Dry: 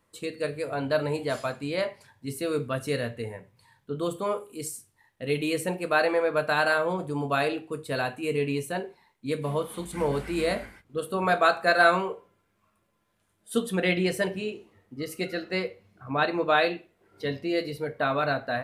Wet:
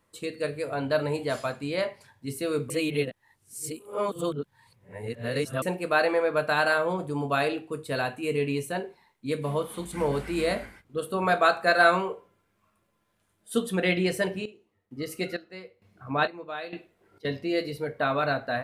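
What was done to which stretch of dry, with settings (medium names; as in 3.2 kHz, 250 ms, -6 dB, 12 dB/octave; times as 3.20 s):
2.70–5.62 s: reverse
14.00–17.25 s: square tremolo 1.1 Hz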